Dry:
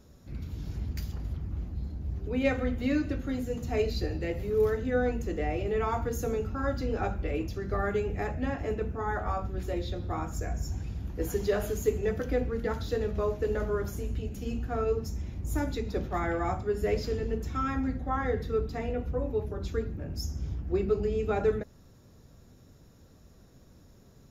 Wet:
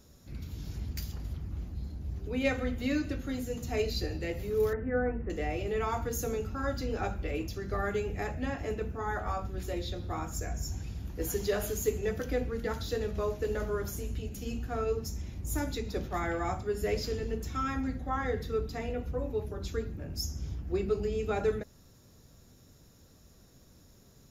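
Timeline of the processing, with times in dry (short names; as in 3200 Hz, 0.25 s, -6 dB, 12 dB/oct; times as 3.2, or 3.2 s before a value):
4.73–5.3 steep low-pass 2000 Hz
whole clip: high shelf 3000 Hz +9 dB; gain -3 dB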